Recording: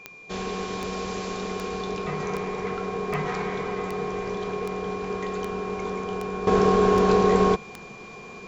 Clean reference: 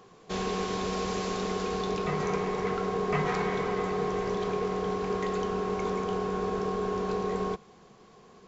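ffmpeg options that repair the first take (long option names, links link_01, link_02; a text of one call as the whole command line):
ffmpeg -i in.wav -af "adeclick=threshold=4,bandreject=frequency=2400:width=30,agate=range=-21dB:threshold=-33dB,asetnsamples=nb_out_samples=441:pad=0,asendcmd='6.47 volume volume -11.5dB',volume=0dB" out.wav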